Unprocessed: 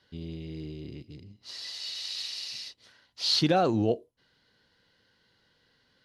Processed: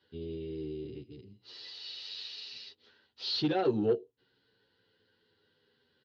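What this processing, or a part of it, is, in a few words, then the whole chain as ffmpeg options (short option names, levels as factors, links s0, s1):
barber-pole flanger into a guitar amplifier: -filter_complex "[0:a]asplit=2[s0][s1];[s1]adelay=9.8,afreqshift=-0.35[s2];[s0][s2]amix=inputs=2:normalize=1,asoftclip=type=tanh:threshold=0.075,highpass=82,equalizer=f=170:t=q:w=4:g=-5,equalizer=f=410:t=q:w=4:g=10,equalizer=f=640:t=q:w=4:g=-8,equalizer=f=1100:t=q:w=4:g=-5,equalizer=f=2100:t=q:w=4:g=-7,lowpass=f=4200:w=0.5412,lowpass=f=4200:w=1.3066"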